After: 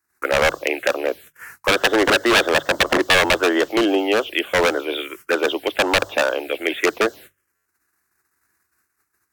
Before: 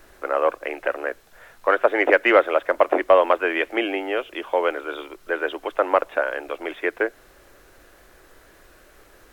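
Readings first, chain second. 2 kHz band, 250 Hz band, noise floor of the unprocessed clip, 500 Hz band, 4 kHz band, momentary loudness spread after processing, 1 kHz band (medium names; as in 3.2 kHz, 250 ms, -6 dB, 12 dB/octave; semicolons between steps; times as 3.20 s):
+5.0 dB, +7.0 dB, -53 dBFS, +1.0 dB, +14.5 dB, 9 LU, +0.5 dB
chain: high-pass 71 Hz 24 dB/octave; dynamic bell 220 Hz, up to +4 dB, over -33 dBFS, Q 0.71; in parallel at +0.5 dB: peak limiter -10.5 dBFS, peak gain reduction 8.5 dB; on the sum: touch-sensitive phaser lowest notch 540 Hz, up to 2.4 kHz, full sweep at -12.5 dBFS; wavefolder -12 dBFS; treble shelf 2 kHz +11 dB; gate -39 dBFS, range -34 dB; hum notches 50/100/150 Hz; buffer glitch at 7.55 s, samples 512, times 8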